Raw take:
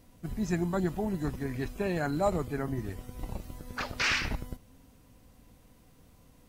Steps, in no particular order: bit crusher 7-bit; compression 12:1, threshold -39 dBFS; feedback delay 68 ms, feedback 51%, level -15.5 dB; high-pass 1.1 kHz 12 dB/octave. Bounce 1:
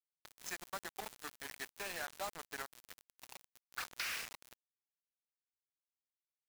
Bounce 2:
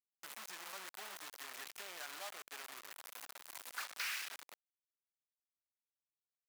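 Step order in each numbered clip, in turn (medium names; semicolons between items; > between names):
high-pass > compression > feedback delay > bit crusher; compression > feedback delay > bit crusher > high-pass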